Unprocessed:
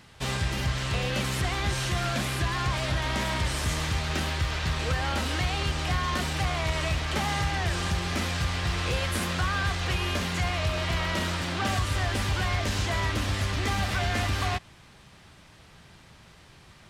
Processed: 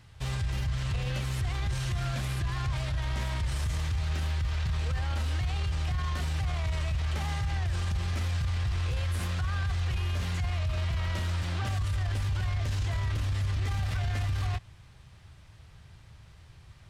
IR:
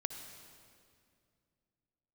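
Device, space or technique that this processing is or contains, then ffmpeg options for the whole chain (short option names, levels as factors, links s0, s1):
car stereo with a boomy subwoofer: -af "lowshelf=f=150:t=q:w=1.5:g=10.5,alimiter=limit=0.15:level=0:latency=1:release=17,volume=0.447"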